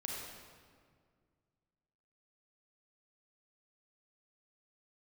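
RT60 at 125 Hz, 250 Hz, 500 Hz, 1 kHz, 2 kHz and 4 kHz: 2.7, 2.4, 2.1, 1.8, 1.6, 1.3 seconds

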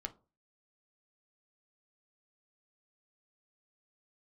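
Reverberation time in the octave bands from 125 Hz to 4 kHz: 0.45, 0.35, 0.40, 0.35, 0.20, 0.20 seconds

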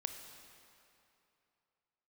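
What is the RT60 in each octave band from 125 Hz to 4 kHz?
2.8, 2.7, 2.8, 2.8, 2.5, 2.2 seconds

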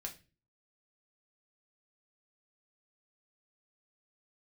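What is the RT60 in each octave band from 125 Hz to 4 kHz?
0.55, 0.50, 0.40, 0.25, 0.35, 0.30 seconds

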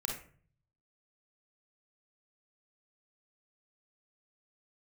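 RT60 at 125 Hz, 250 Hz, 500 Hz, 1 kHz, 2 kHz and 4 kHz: 1.0, 0.65, 0.50, 0.45, 0.40, 0.30 seconds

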